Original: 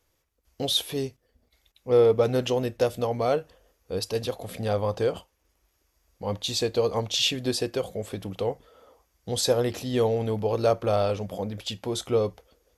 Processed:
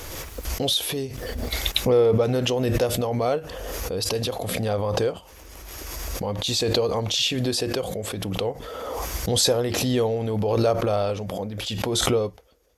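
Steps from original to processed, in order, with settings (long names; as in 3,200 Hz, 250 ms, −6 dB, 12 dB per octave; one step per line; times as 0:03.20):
background raised ahead of every attack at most 22 dB per second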